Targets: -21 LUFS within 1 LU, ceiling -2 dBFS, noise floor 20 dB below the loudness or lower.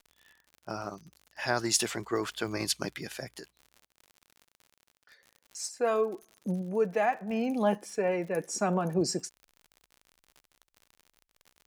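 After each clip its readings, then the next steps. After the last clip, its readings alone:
ticks 60/s; loudness -31.0 LUFS; peak -12.5 dBFS; loudness target -21.0 LUFS
-> de-click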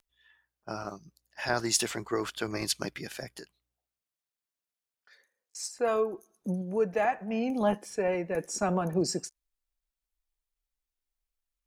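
ticks 0.26/s; loudness -31.0 LUFS; peak -12.5 dBFS; loudness target -21.0 LUFS
-> gain +10 dB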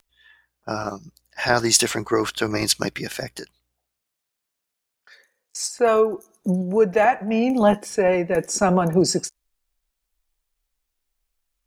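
loudness -21.0 LUFS; peak -2.5 dBFS; noise floor -82 dBFS

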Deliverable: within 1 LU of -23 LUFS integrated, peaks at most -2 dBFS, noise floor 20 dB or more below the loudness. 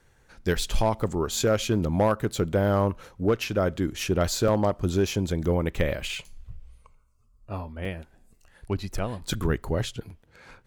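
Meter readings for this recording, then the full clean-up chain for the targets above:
clipped 0.4%; flat tops at -14.5 dBFS; dropouts 6; longest dropout 3.0 ms; loudness -27.0 LUFS; peak -14.5 dBFS; loudness target -23.0 LUFS
-> clip repair -14.5 dBFS; interpolate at 1.08/2.28/4.48/7.85/9.33/10.1, 3 ms; gain +4 dB

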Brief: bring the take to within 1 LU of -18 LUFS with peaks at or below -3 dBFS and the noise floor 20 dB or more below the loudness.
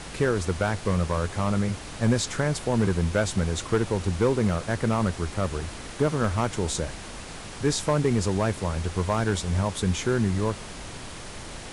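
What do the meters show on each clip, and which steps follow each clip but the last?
clipped 0.5%; flat tops at -14.5 dBFS; noise floor -39 dBFS; noise floor target -46 dBFS; loudness -26.0 LUFS; peak -14.5 dBFS; loudness target -18.0 LUFS
-> clip repair -14.5 dBFS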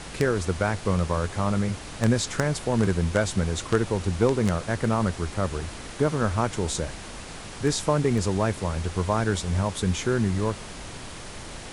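clipped 0.0%; noise floor -39 dBFS; noise floor target -46 dBFS
-> noise print and reduce 7 dB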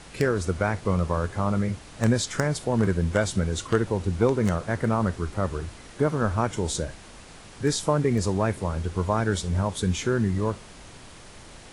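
noise floor -46 dBFS; loudness -26.0 LUFS; peak -6.0 dBFS; loudness target -18.0 LUFS
-> gain +8 dB; limiter -3 dBFS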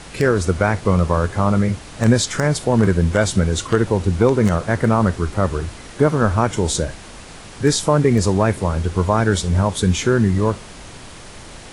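loudness -18.0 LUFS; peak -3.0 dBFS; noise floor -38 dBFS

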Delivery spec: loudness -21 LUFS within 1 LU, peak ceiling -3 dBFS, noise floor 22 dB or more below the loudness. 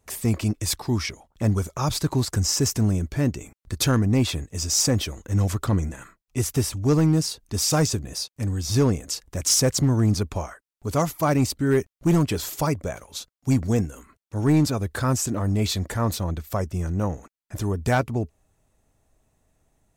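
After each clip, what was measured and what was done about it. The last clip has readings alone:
clipped 0.7%; flat tops at -13.0 dBFS; loudness -24.0 LUFS; peak -13.0 dBFS; loudness target -21.0 LUFS
-> clip repair -13 dBFS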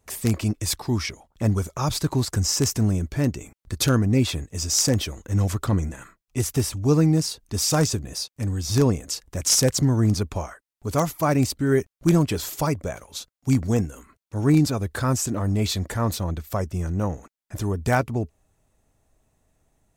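clipped 0.0%; loudness -23.5 LUFS; peak -4.0 dBFS; loudness target -21.0 LUFS
-> gain +2.5 dB; limiter -3 dBFS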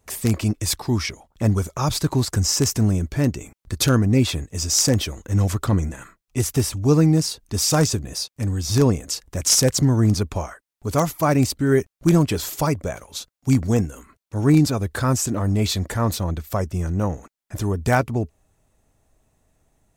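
loudness -21.0 LUFS; peak -3.0 dBFS; noise floor -79 dBFS

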